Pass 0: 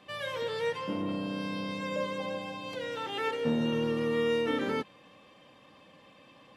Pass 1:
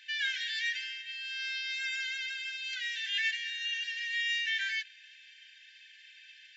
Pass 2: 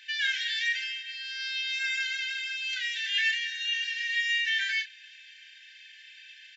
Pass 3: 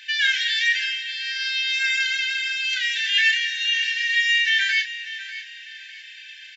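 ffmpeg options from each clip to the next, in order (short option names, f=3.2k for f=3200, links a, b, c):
-af "afftfilt=real='re*between(b*sr/4096,1500,7600)':imag='im*between(b*sr/4096,1500,7600)':win_size=4096:overlap=0.75,volume=7.5dB"
-filter_complex "[0:a]asplit=2[a][b];[b]adelay=32,volume=-6.5dB[c];[a][c]amix=inputs=2:normalize=0,volume=3.5dB"
-af "aecho=1:1:596|1192|1788:0.2|0.0678|0.0231,volume=8dB"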